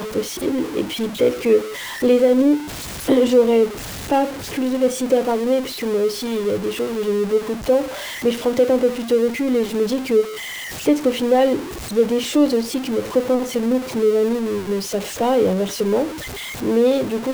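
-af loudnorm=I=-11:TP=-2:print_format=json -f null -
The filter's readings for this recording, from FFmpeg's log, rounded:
"input_i" : "-19.7",
"input_tp" : "-4.7",
"input_lra" : "2.8",
"input_thresh" : "-29.7",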